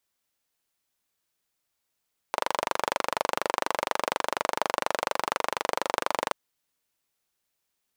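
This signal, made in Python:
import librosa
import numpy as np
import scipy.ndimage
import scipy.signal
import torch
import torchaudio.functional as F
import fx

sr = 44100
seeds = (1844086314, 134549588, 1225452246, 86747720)

y = fx.engine_single(sr, seeds[0], length_s=3.98, rpm=2900, resonances_hz=(590.0, 900.0))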